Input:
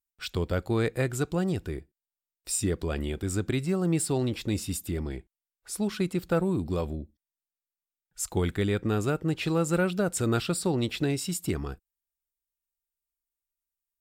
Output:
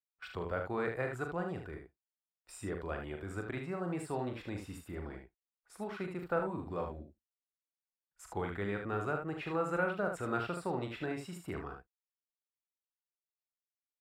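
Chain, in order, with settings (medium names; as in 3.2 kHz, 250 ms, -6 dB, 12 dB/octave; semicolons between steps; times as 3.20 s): gate -45 dBFS, range -13 dB; three-band isolator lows -13 dB, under 590 Hz, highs -22 dB, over 2 kHz; early reflections 40 ms -7 dB, 75 ms -6.5 dB; trim -1.5 dB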